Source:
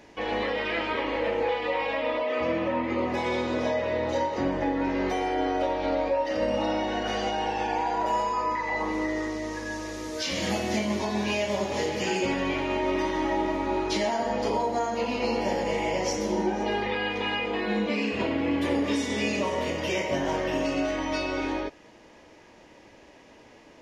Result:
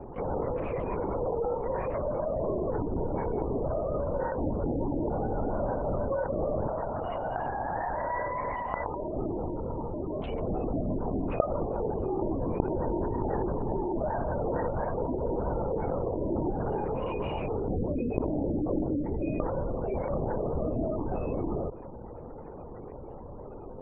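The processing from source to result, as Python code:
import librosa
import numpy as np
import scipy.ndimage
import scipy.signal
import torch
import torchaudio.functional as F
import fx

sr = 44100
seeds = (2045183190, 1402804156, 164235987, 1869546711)

y = fx.lower_of_two(x, sr, delay_ms=0.31)
y = scipy.signal.sosfilt(scipy.signal.butter(2, 1300.0, 'lowpass', fs=sr, output='sos'), y)
y = fx.spec_gate(y, sr, threshold_db=-20, keep='strong')
y = fx.highpass(y, sr, hz=550.0, slope=12, at=(6.68, 9.16))
y = fx.lpc_vocoder(y, sr, seeds[0], excitation='whisper', order=8)
y = fx.env_flatten(y, sr, amount_pct=50)
y = y * 10.0 ** (-8.5 / 20.0)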